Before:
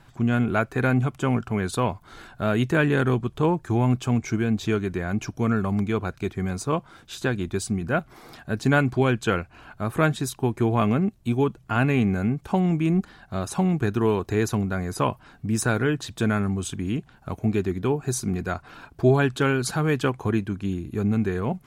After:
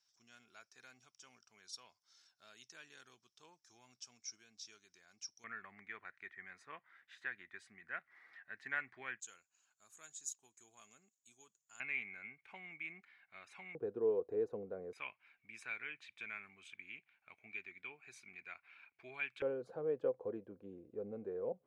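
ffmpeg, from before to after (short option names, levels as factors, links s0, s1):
-af "asetnsamples=n=441:p=0,asendcmd='5.44 bandpass f 1900;9.2 bandpass f 6900;11.8 bandpass f 2200;13.75 bandpass f 490;14.93 bandpass f 2300;19.42 bandpass f 510',bandpass=f=5500:t=q:w=12:csg=0"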